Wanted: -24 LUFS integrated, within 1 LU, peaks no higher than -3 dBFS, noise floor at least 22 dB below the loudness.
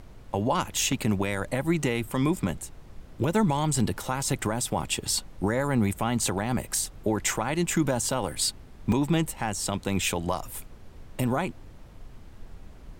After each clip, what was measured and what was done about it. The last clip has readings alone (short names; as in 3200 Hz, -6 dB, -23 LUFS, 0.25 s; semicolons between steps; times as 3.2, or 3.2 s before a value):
dropouts 3; longest dropout 2.4 ms; noise floor -48 dBFS; noise floor target -50 dBFS; loudness -27.5 LUFS; peak -13.5 dBFS; loudness target -24.0 LUFS
-> interpolate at 0.92/4.82/8.92, 2.4 ms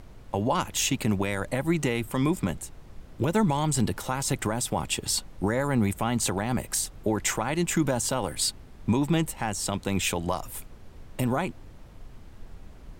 dropouts 0; noise floor -48 dBFS; noise floor target -50 dBFS
-> noise print and reduce 6 dB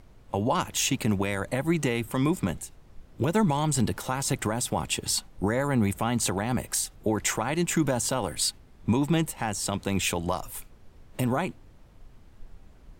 noise floor -53 dBFS; loudness -27.5 LUFS; peak -14.0 dBFS; loudness target -24.0 LUFS
-> gain +3.5 dB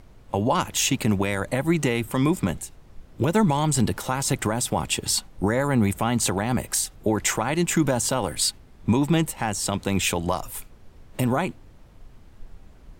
loudness -24.0 LUFS; peak -10.5 dBFS; noise floor -50 dBFS